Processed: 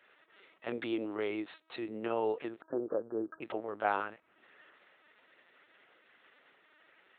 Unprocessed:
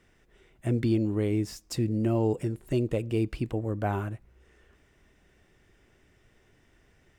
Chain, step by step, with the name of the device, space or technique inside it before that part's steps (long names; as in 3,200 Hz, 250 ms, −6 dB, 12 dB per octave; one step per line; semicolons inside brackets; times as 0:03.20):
0:02.61–0:03.42: Chebyshev low-pass filter 1,700 Hz, order 10
talking toy (linear-prediction vocoder at 8 kHz pitch kept; high-pass filter 630 Hz 12 dB per octave; parametric band 1,300 Hz +5 dB 0.27 octaves)
level +3.5 dB